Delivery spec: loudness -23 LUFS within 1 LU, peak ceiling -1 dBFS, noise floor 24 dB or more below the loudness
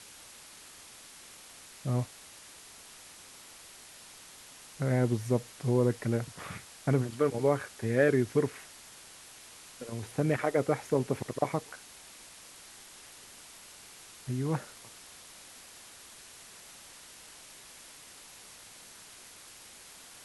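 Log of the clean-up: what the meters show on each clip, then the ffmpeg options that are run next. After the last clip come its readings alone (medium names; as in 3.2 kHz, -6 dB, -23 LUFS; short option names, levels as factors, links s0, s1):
noise floor -52 dBFS; noise floor target -55 dBFS; loudness -31.0 LUFS; peak level -12.5 dBFS; loudness target -23.0 LUFS
-> -af "afftdn=nr=6:nf=-52"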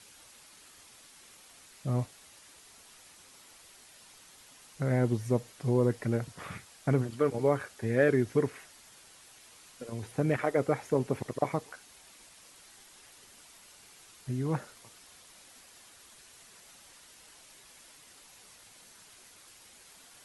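noise floor -56 dBFS; loudness -31.0 LUFS; peak level -12.5 dBFS; loudness target -23.0 LUFS
-> -af "volume=2.51"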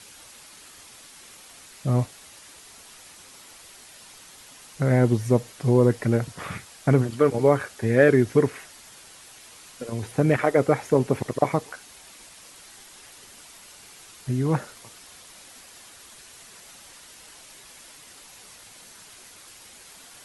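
loudness -23.0 LUFS; peak level -4.5 dBFS; noise floor -48 dBFS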